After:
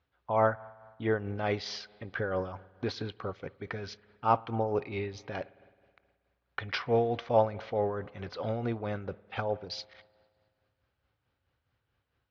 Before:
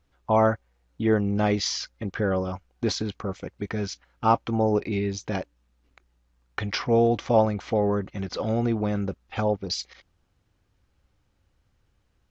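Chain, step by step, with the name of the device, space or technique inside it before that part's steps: combo amplifier with spring reverb and tremolo (spring tank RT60 1.9 s, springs 53 ms, chirp 55 ms, DRR 19.5 dB; tremolo 4.6 Hz, depth 48%; speaker cabinet 98–4400 Hz, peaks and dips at 200 Hz -10 dB, 320 Hz -6 dB, 1500 Hz +3 dB); gain -3 dB

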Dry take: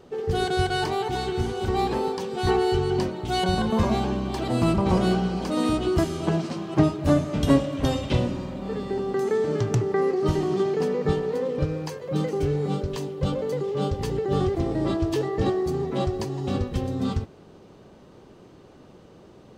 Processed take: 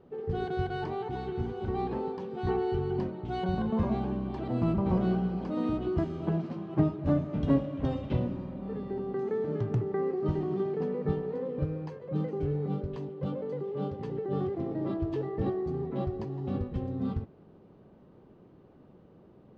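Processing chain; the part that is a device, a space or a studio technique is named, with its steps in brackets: phone in a pocket (LPF 3800 Hz 12 dB/oct; bell 180 Hz +4 dB 1.4 oct; high shelf 2100 Hz -11 dB); 13.09–14.99 HPF 140 Hz 12 dB/oct; gain -8 dB

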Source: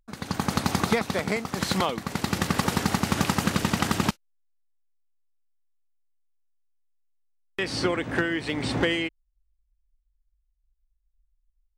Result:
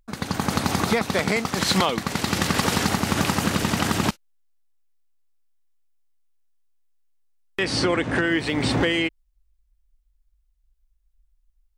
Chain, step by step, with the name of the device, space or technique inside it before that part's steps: clipper into limiter (hard clip -12 dBFS, distortion -35 dB; limiter -17.5 dBFS, peak gain reduction 5.5 dB); 1.15–2.89 bell 4200 Hz +3.5 dB 2.8 oct; 7.65–8.27 steep low-pass 11000 Hz 96 dB/oct; gain +6 dB

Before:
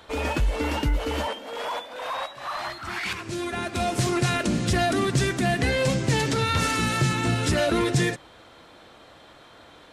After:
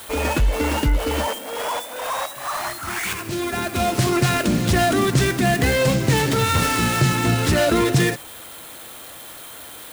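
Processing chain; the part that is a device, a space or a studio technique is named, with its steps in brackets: budget class-D amplifier (switching dead time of 0.097 ms; switching spikes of -30 dBFS); gain +5 dB

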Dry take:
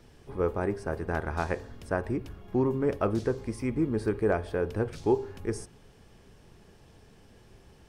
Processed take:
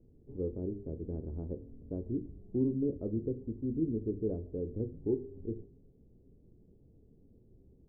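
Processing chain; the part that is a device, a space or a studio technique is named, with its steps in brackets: dynamic EQ 750 Hz, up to -4 dB, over -45 dBFS, Q 2.8; under water (LPF 430 Hz 24 dB/oct; bell 270 Hz +5 dB 0.24 oct); notches 50/100/150/200/250/300/350/400 Hz; gain -4.5 dB

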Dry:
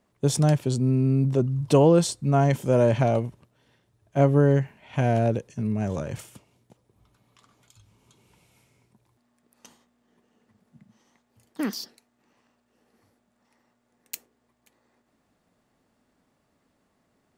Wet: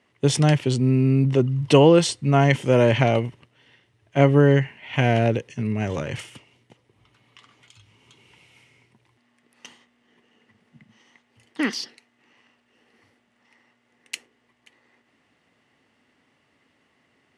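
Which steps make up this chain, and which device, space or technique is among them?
car door speaker (speaker cabinet 97–9200 Hz, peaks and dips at 190 Hz -7 dB, 630 Hz -4 dB, 2000 Hz +10 dB, 2900 Hz +10 dB, 7300 Hz -5 dB); gain +4.5 dB

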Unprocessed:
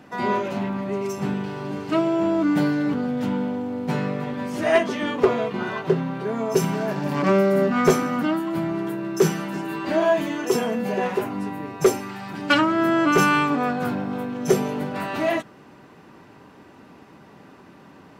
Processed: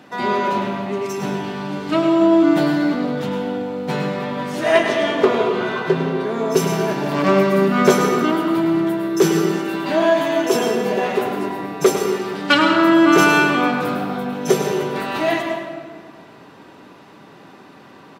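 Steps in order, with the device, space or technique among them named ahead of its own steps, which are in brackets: PA in a hall (HPF 200 Hz 6 dB/oct; bell 3700 Hz +5 dB 0.51 oct; echo 0.103 s -9.5 dB; reverb RT60 1.7 s, pre-delay 0.107 s, DRR 5 dB); gain +3.5 dB

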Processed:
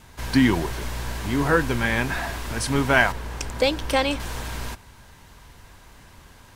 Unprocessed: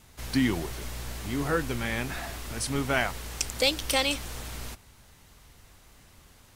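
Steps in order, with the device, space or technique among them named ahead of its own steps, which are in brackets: 3.12–4.2 high shelf 2100 Hz -9 dB; inside a helmet (high shelf 5200 Hz -6 dB; small resonant body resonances 970/1600 Hz, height 8 dB, ringing for 30 ms); gain +7 dB

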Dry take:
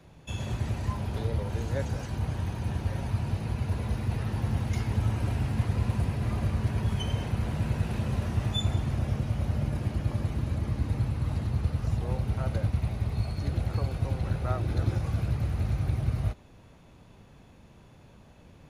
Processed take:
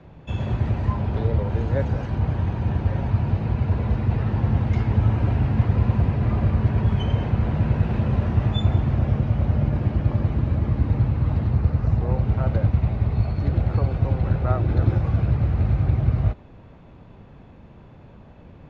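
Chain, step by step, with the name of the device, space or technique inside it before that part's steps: phone in a pocket (LPF 3600 Hz 12 dB/oct; high shelf 2200 Hz -9 dB); 11.55–12.18 bell 3200 Hz -5.5 dB 0.41 oct; gain +8 dB

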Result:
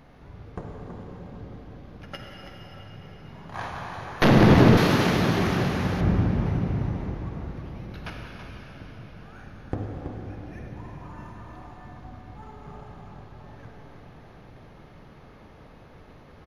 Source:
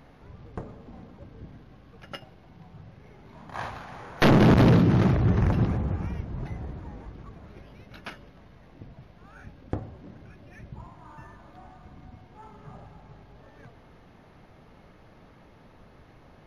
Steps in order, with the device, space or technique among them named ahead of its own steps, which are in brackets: cave (echo 0.327 s -9.5 dB; reverb RT60 5.0 s, pre-delay 46 ms, DRR -0.5 dB); 4.77–6.01 tilt +3 dB/oct

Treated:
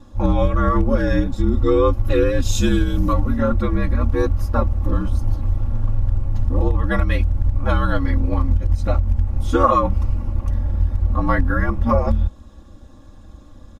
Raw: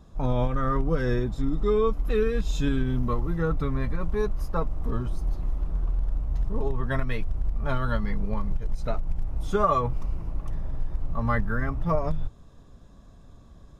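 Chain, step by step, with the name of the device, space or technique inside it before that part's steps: 2.42–3.13 tone controls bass 0 dB, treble +10 dB; ring-modulated robot voice (ring modulator 64 Hz; comb 3.6 ms, depth 91%); gain +7.5 dB

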